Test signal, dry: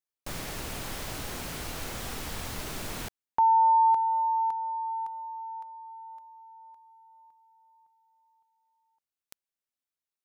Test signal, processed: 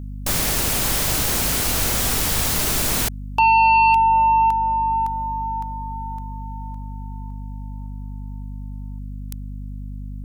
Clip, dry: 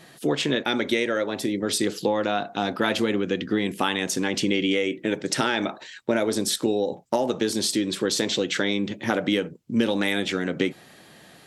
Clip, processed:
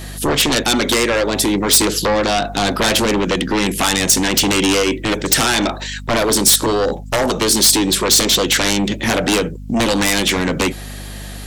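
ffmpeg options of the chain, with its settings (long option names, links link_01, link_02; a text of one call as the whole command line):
ffmpeg -i in.wav -af "aeval=exprs='0.376*sin(PI/2*3.98*val(0)/0.376)':channel_layout=same,aeval=exprs='val(0)+0.0501*(sin(2*PI*50*n/s)+sin(2*PI*2*50*n/s)/2+sin(2*PI*3*50*n/s)/3+sin(2*PI*4*50*n/s)/4+sin(2*PI*5*50*n/s)/5)':channel_layout=same,highshelf=frequency=4900:gain=10,volume=-4dB" out.wav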